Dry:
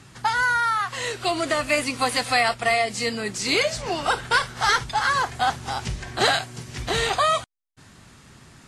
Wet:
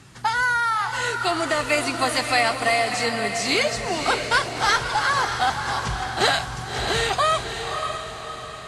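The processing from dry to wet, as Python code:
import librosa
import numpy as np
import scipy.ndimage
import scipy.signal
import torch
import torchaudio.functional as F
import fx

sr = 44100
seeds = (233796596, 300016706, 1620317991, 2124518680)

y = fx.echo_diffused(x, sr, ms=596, feedback_pct=48, wet_db=-6.5)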